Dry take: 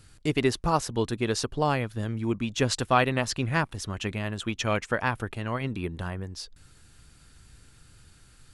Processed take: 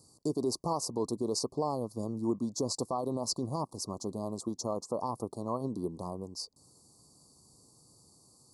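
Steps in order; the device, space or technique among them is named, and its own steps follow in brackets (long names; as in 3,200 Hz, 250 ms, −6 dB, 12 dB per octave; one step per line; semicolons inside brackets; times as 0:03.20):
PA system with an anti-feedback notch (high-pass filter 190 Hz 12 dB per octave; Butterworth band-reject 1,500 Hz, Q 3.4; brickwall limiter −20 dBFS, peak gain reduction 11 dB)
Chebyshev band-stop filter 1,100–4,500 Hz, order 4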